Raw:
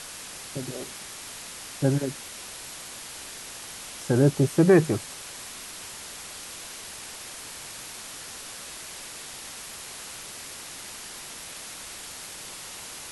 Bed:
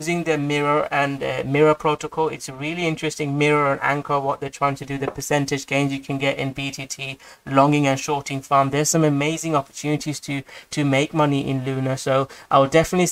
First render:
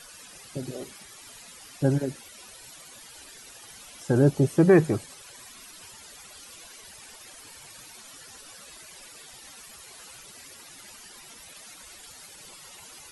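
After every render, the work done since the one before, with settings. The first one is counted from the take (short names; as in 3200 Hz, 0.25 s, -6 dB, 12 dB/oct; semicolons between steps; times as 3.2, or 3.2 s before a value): denoiser 14 dB, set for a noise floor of -41 dBFS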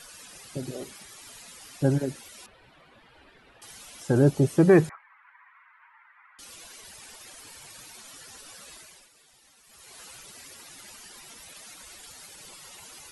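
2.46–3.62 air absorption 460 m; 4.89–6.39 elliptic band-pass 930–2100 Hz, stop band 60 dB; 8.73–10 dip -12.5 dB, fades 0.36 s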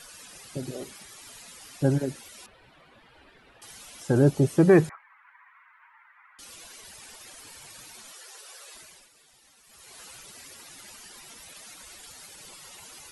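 8.12–8.75 steep high-pass 350 Hz 96 dB/oct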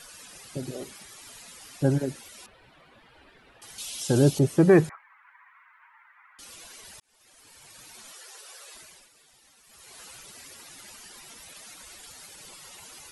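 3.78–4.39 resonant high shelf 2400 Hz +9.5 dB, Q 1.5; 7–8.07 fade in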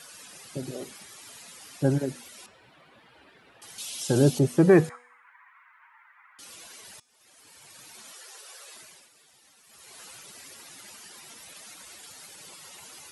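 HPF 100 Hz 12 dB/oct; de-hum 243.7 Hz, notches 39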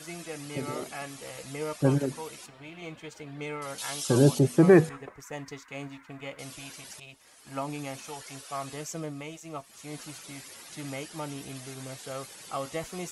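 add bed -19 dB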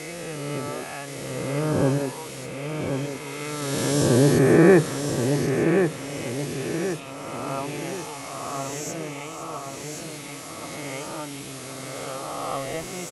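spectral swells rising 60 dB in 2.24 s; on a send: feedback echo 1.078 s, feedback 45%, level -6 dB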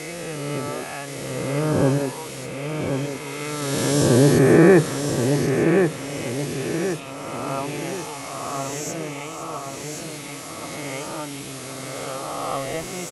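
gain +2.5 dB; limiter -3 dBFS, peak gain reduction 1.5 dB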